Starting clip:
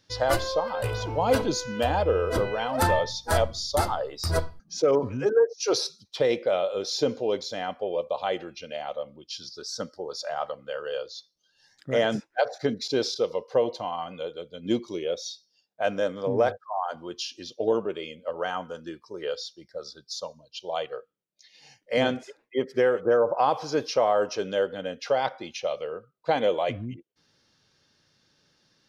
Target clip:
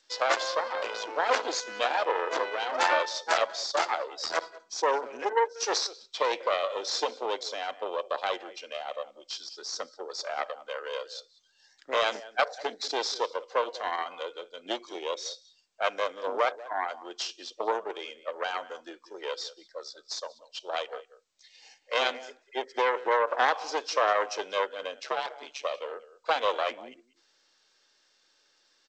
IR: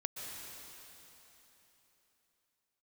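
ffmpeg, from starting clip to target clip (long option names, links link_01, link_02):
-filter_complex "[0:a]asplit=3[link_01][link_02][link_03];[link_01]afade=type=out:start_time=13.76:duration=0.02[link_04];[link_02]equalizer=frequency=1300:width=1.5:gain=5,afade=type=in:start_time=13.76:duration=0.02,afade=type=out:start_time=14.99:duration=0.02[link_05];[link_03]afade=type=in:start_time=14.99:duration=0.02[link_06];[link_04][link_05][link_06]amix=inputs=3:normalize=0,asplit=2[link_07][link_08];[link_08]adelay=190,highpass=300,lowpass=3400,asoftclip=type=hard:threshold=-17.5dB,volume=-16dB[link_09];[link_07][link_09]amix=inputs=2:normalize=0,aeval=exprs='0.355*(cos(1*acos(clip(val(0)/0.355,-1,1)))-cos(1*PI/2))+0.00316*(cos(2*acos(clip(val(0)/0.355,-1,1)))-cos(2*PI/2))+0.00355*(cos(3*acos(clip(val(0)/0.355,-1,1)))-cos(3*PI/2))+0.126*(cos(4*acos(clip(val(0)/0.355,-1,1)))-cos(4*PI/2))':channel_layout=same,acrossover=split=450|3000[link_10][link_11][link_12];[link_10]acompressor=threshold=-30dB:ratio=2.5[link_13];[link_13][link_11][link_12]amix=inputs=3:normalize=0,asplit=3[link_14][link_15][link_16];[link_14]afade=type=out:start_time=25.02:duration=0.02[link_17];[link_15]aeval=exprs='val(0)*sin(2*PI*71*n/s)':channel_layout=same,afade=type=in:start_time=25.02:duration=0.02,afade=type=out:start_time=25.63:duration=0.02[link_18];[link_16]afade=type=in:start_time=25.63:duration=0.02[link_19];[link_17][link_18][link_19]amix=inputs=3:normalize=0,highpass=frequency=300:width=0.5412,highpass=frequency=300:width=1.3066,lowshelf=frequency=430:gain=-10" -ar 16000 -c:a g722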